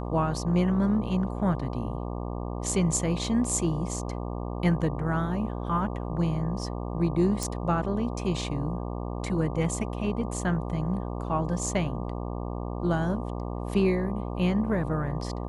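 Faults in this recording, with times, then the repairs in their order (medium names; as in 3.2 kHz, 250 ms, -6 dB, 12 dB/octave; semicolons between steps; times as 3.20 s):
buzz 60 Hz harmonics 20 -33 dBFS
7.43 s: pop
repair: de-click; de-hum 60 Hz, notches 20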